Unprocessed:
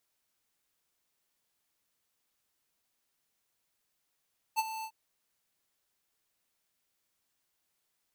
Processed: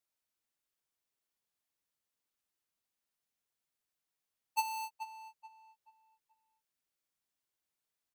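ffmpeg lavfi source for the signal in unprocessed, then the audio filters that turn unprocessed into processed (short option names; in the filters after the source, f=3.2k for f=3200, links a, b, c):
-f lavfi -i "aevalsrc='0.0473*(2*lt(mod(884*t,1),0.5)-1)':d=0.348:s=44100,afade=t=in:d=0.031,afade=t=out:st=0.031:d=0.032:silence=0.237,afade=t=out:st=0.28:d=0.068"
-filter_complex "[0:a]agate=range=-10dB:threshold=-43dB:ratio=16:detection=peak,asplit=2[a][b];[b]adelay=431,lowpass=f=2.8k:p=1,volume=-10dB,asplit=2[c][d];[d]adelay=431,lowpass=f=2.8k:p=1,volume=0.32,asplit=2[e][f];[f]adelay=431,lowpass=f=2.8k:p=1,volume=0.32,asplit=2[g][h];[h]adelay=431,lowpass=f=2.8k:p=1,volume=0.32[i];[c][e][g][i]amix=inputs=4:normalize=0[j];[a][j]amix=inputs=2:normalize=0"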